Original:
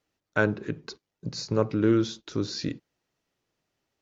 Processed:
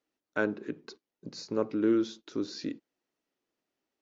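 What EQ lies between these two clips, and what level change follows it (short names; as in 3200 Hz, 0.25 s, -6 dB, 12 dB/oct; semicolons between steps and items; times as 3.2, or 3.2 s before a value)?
tone controls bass +4 dB, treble -2 dB; resonant low shelf 180 Hz -13 dB, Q 1.5; -6.5 dB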